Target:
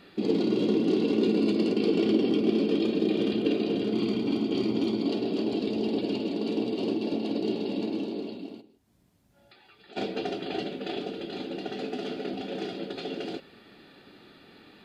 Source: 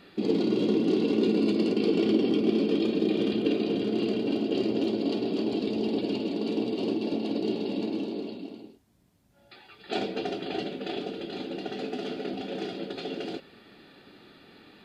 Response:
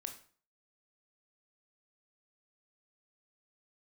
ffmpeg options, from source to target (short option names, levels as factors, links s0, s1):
-filter_complex "[0:a]asettb=1/sr,asplit=3[s0][s1][s2];[s0]atrim=end=3.934[s3];[s1]atrim=start=3.93:end=5.08,asetpts=PTS-STARTPTS,afade=t=in:d=0.004:c=qsin,afade=t=out:st=1.146:d=0.004:c=qsin,aecho=1:1:0.9:0.49,atrim=end_sample=50715[s4];[s2]atrim=start=5.076[s5];[s3][s4]acrossfade=d=0.004:c1=hsin:c2=qsin[s6];[s6][s5]acrossfade=d=0.004:c1=qsin:c2=hsin,asplit=3[s7][s8][s9];[s7]afade=t=out:st=8.6:d=0.02[s10];[s8]acompressor=threshold=0.00178:ratio=3,afade=t=in:st=8.6:d=0.02,afade=t=out:st=9.96:d=0.02[s11];[s9]afade=t=in:st=9.96:d=0.02[s12];[s10][s11][s12]amix=inputs=3:normalize=0"